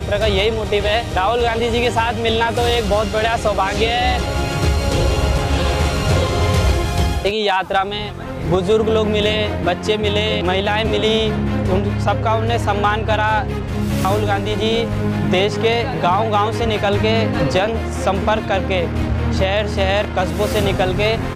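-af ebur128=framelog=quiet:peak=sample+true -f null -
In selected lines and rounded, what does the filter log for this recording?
Integrated loudness:
  I:         -17.7 LUFS
  Threshold: -27.7 LUFS
Loudness range:
  LRA:         1.0 LU
  Threshold: -37.7 LUFS
  LRA low:   -18.2 LUFS
  LRA high:  -17.2 LUFS
Sample peak:
  Peak:       -7.4 dBFS
True peak:
  Peak:       -7.3 dBFS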